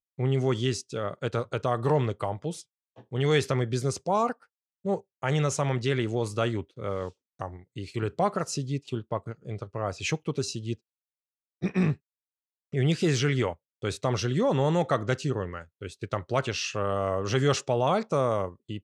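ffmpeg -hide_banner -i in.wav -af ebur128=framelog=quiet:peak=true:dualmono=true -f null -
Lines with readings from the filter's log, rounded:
Integrated loudness:
  I:         -25.5 LUFS
  Threshold: -35.9 LUFS
Loudness range:
  LRA:         5.0 LU
  Threshold: -46.4 LUFS
  LRA low:   -29.5 LUFS
  LRA high:  -24.5 LUFS
True peak:
  Peak:      -11.4 dBFS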